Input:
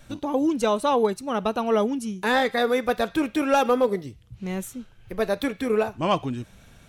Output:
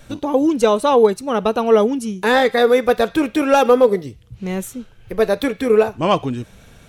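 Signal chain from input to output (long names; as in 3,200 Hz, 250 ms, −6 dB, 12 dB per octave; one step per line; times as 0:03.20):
parametric band 460 Hz +5 dB 0.41 octaves
level +5.5 dB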